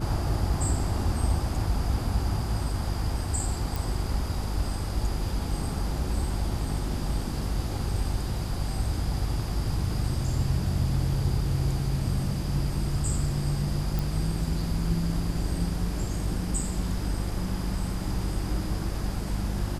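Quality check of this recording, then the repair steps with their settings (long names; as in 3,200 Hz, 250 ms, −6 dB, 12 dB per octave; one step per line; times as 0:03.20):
mains hum 50 Hz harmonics 7 −32 dBFS
0:03.76: click
0:13.99: click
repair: click removal
hum removal 50 Hz, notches 7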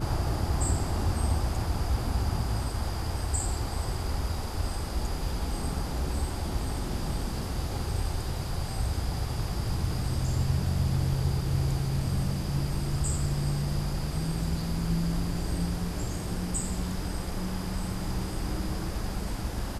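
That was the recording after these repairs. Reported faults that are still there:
none of them is left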